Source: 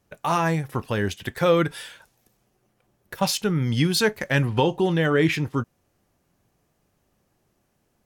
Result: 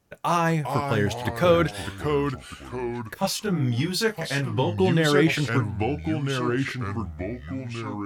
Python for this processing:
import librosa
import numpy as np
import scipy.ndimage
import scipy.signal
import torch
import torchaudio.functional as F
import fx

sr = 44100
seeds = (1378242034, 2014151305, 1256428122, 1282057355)

y = fx.echo_pitch(x, sr, ms=360, semitones=-3, count=3, db_per_echo=-6.0)
y = fx.detune_double(y, sr, cents=12, at=(3.14, 4.78))